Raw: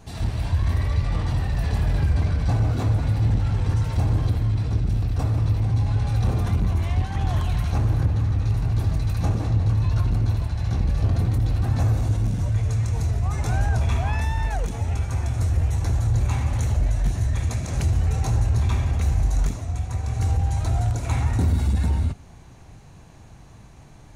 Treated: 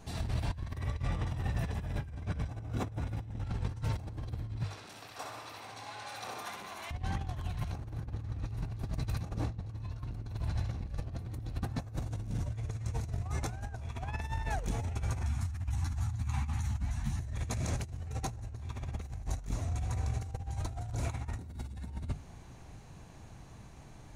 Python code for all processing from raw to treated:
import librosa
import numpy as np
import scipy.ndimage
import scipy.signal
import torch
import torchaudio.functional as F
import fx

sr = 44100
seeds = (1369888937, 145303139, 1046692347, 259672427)

y = fx.chain(x, sr, fx.highpass(hz=46.0, slope=12),
    fx.notch(hz=4400.0, q=5.1), at=(0.77, 3.44))
y = fx.chain(y, sr, fx.highpass(hz=820.0, slope=12),
    fx.room_flutter(wall_m=11.0, rt60_s=0.65), at=(4.63, 6.91))
y = fx.chain(y, sr, fx.cheby1_bandstop(low_hz=250.0, high_hz=850.0, order=2),
    fx.ensemble(), at=(15.23, 17.2))
y = fx.hum_notches(y, sr, base_hz=50, count=3)
y = fx.over_compress(y, sr, threshold_db=-26.0, ratio=-0.5)
y = y * 10.0 ** (-8.5 / 20.0)